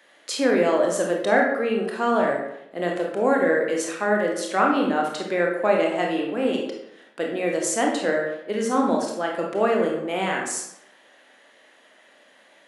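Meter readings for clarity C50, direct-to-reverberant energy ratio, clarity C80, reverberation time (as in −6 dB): 3.5 dB, −0.5 dB, 7.0 dB, 0.80 s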